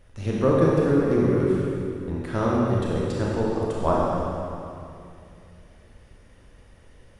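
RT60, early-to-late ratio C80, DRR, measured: 2.6 s, −1.0 dB, −5.0 dB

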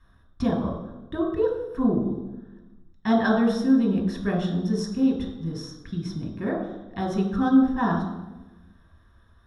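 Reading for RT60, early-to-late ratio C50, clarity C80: 1.1 s, 3.5 dB, 6.0 dB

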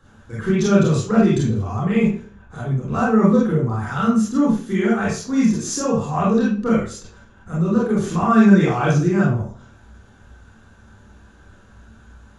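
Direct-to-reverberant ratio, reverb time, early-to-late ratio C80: −6.0 dB, 0.45 s, 7.0 dB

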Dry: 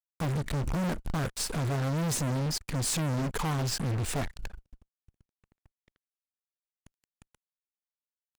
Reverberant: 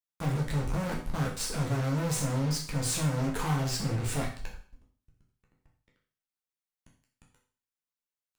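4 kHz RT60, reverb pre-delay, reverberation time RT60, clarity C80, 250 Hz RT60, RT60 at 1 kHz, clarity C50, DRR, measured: 0.45 s, 8 ms, 0.45 s, 11.0 dB, 0.45 s, 0.45 s, 6.5 dB, −2.5 dB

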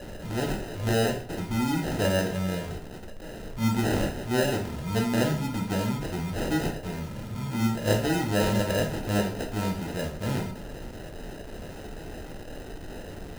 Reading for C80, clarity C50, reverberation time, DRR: 12.5 dB, 8.0 dB, 0.50 s, 1.0 dB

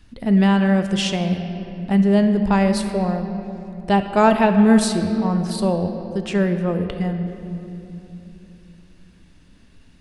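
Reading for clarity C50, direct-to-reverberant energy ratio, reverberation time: 7.5 dB, 6.5 dB, 2.9 s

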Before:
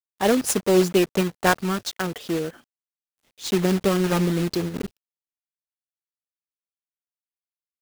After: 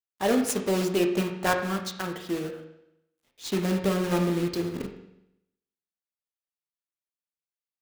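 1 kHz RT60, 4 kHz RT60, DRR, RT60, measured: 0.80 s, 0.80 s, 3.0 dB, 0.80 s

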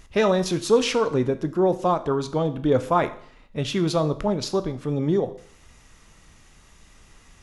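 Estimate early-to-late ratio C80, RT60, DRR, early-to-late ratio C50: 18.0 dB, 0.55 s, 10.0 dB, 15.0 dB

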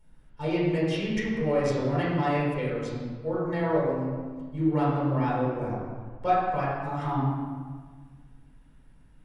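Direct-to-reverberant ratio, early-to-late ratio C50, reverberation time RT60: −8.5 dB, −1.5 dB, 1.5 s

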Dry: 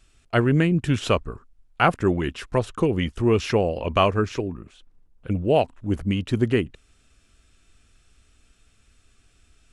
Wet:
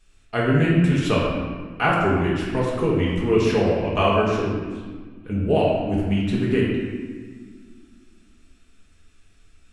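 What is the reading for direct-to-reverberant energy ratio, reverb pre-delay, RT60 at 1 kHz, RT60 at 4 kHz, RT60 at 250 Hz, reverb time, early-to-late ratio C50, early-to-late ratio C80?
−6.0 dB, 4 ms, 1.5 s, 1.1 s, 2.6 s, 1.6 s, −0.5 dB, 2.0 dB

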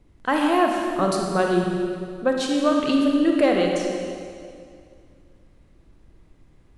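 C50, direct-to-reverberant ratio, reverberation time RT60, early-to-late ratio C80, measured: 1.5 dB, 0.5 dB, 2.3 s, 3.0 dB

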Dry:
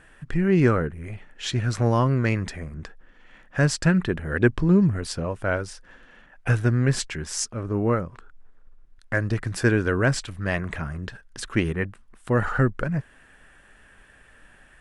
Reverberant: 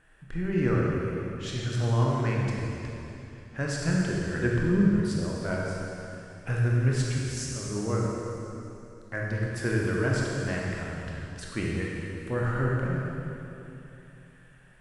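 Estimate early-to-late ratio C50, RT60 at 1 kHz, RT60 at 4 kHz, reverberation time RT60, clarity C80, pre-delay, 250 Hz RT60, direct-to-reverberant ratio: −2.0 dB, 2.8 s, 2.8 s, 2.9 s, 0.0 dB, 20 ms, 3.2 s, −3.5 dB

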